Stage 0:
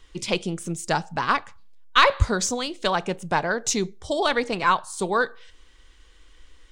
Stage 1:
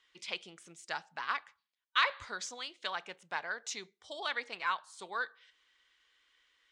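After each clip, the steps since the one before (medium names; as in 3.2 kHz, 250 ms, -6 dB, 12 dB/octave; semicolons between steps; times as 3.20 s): band-pass filter 2.4 kHz, Q 1.1; peaking EQ 2.6 kHz -3.5 dB 0.41 oct; trim -7 dB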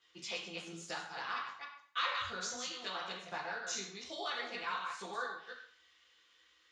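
chunks repeated in reverse 149 ms, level -5.5 dB; compression 1.5:1, threshold -47 dBFS, peak gain reduction 9 dB; reverberation RT60 0.55 s, pre-delay 3 ms, DRR -6 dB; trim -3 dB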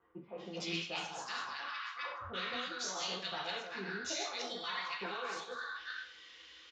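low-pass 6.3 kHz 24 dB/octave; reverse; compression 6:1, threshold -49 dBFS, peak gain reduction 17.5 dB; reverse; bands offset in time lows, highs 380 ms, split 1.2 kHz; trim +12.5 dB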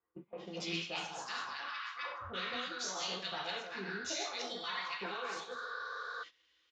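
spectral replace 5.63–6.20 s, 430–5500 Hz before; gate -48 dBFS, range -17 dB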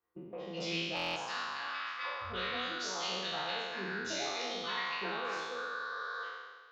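spectral sustain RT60 1.46 s; peaking EQ 7.7 kHz -7.5 dB 0.92 oct; buffer glitch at 0.95 s, samples 1024, times 8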